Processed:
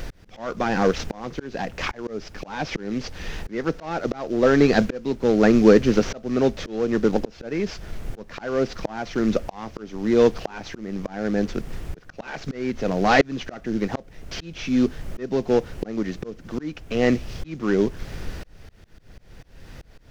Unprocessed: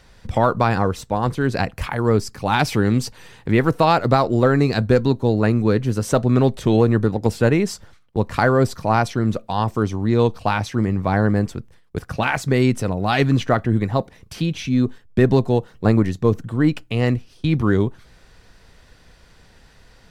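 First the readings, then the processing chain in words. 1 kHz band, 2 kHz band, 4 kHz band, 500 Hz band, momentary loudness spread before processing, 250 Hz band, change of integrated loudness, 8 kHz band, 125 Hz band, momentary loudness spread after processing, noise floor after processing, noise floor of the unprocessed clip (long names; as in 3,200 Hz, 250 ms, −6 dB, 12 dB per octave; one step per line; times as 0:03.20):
−7.5 dB, −3.5 dB, −3.5 dB, −2.0 dB, 8 LU, −3.0 dB, −3.5 dB, −5.0 dB, −13.0 dB, 17 LU, −49 dBFS, −51 dBFS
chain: variable-slope delta modulation 32 kbit/s
high-pass filter 190 Hz 24 dB per octave
background noise brown −40 dBFS
in parallel at −2 dB: downward compressor, threshold −30 dBFS, peak gain reduction 17 dB
on the sum: volume swells 677 ms
graphic EQ with 15 bands 250 Hz −3 dB, 1,000 Hz −6 dB, 4,000 Hz −4 dB
level +6.5 dB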